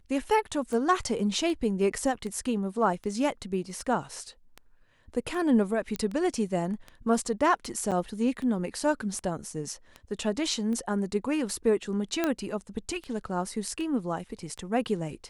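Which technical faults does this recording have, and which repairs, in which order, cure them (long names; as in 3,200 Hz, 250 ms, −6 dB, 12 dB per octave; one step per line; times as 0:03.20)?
scratch tick 78 rpm −25 dBFS
0:05.96: click −16 dBFS
0:07.91–0:07.92: drop-out 7.2 ms
0:12.24: click −12 dBFS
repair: click removal
repair the gap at 0:07.91, 7.2 ms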